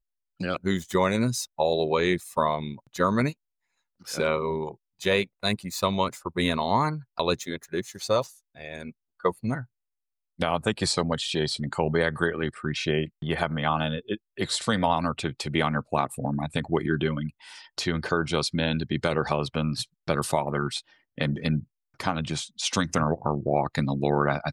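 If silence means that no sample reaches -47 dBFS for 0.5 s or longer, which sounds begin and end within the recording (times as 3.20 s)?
4.01–9.65 s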